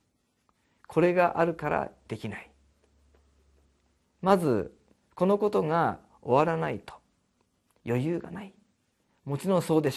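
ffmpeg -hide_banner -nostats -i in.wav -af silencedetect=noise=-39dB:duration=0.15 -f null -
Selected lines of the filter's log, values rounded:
silence_start: 0.00
silence_end: 0.84 | silence_duration: 0.84
silence_start: 1.87
silence_end: 2.10 | silence_duration: 0.23
silence_start: 2.42
silence_end: 4.23 | silence_duration: 1.81
silence_start: 4.67
silence_end: 5.18 | silence_duration: 0.51
silence_start: 5.96
silence_end: 6.26 | silence_duration: 0.30
silence_start: 6.94
silence_end: 7.86 | silence_duration: 0.92
silence_start: 8.46
silence_end: 9.27 | silence_duration: 0.80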